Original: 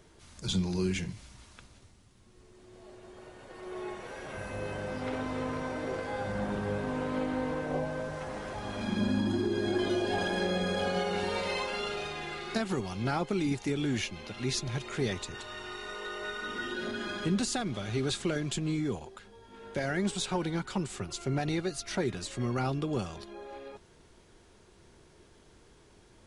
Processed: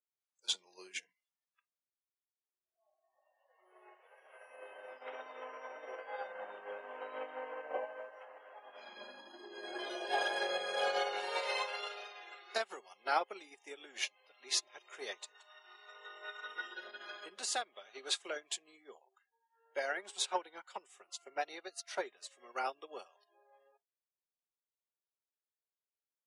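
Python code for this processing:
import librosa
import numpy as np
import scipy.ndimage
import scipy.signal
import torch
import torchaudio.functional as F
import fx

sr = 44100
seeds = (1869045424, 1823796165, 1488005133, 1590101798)

y = fx.high_shelf(x, sr, hz=fx.line((8.25, 6600.0), (8.74, 3900.0)), db=-9.0, at=(8.25, 8.74), fade=0.02)
y = fx.noise_reduce_blind(y, sr, reduce_db=24)
y = scipy.signal.sosfilt(scipy.signal.butter(4, 500.0, 'highpass', fs=sr, output='sos'), y)
y = fx.upward_expand(y, sr, threshold_db=-46.0, expansion=2.5)
y = F.gain(torch.from_numpy(y), 3.5).numpy()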